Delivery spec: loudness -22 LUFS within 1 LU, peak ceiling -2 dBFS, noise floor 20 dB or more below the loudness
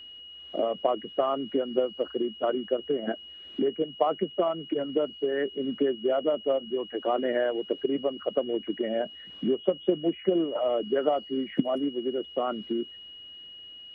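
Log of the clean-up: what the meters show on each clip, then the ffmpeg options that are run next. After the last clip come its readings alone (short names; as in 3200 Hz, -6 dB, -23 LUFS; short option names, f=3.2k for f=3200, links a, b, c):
steady tone 2900 Hz; tone level -43 dBFS; loudness -29.0 LUFS; peak -10.5 dBFS; loudness target -22.0 LUFS
-> -af "bandreject=f=2.9k:w=30"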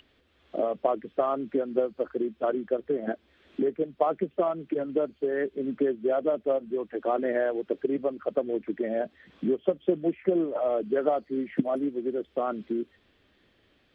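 steady tone none; loudness -29.0 LUFS; peak -10.0 dBFS; loudness target -22.0 LUFS
-> -af "volume=7dB"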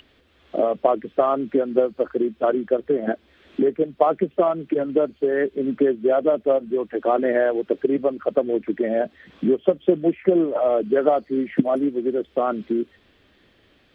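loudness -22.0 LUFS; peak -3.0 dBFS; noise floor -59 dBFS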